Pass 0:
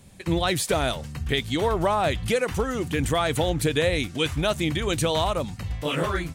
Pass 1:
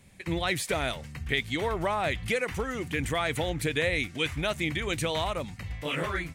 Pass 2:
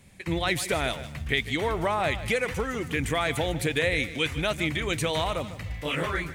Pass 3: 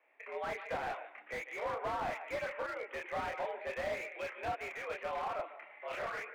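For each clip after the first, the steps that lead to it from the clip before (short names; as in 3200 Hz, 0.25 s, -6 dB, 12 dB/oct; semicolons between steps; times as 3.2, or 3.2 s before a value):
bell 2100 Hz +9 dB 0.66 oct; gain -6.5 dB
lo-fi delay 0.15 s, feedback 35%, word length 9-bit, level -14 dB; gain +2 dB
chorus voices 4, 1.4 Hz, delay 29 ms, depth 3 ms; mistuned SSB +81 Hz 420–2300 Hz; slew limiter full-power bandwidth 28 Hz; gain -3.5 dB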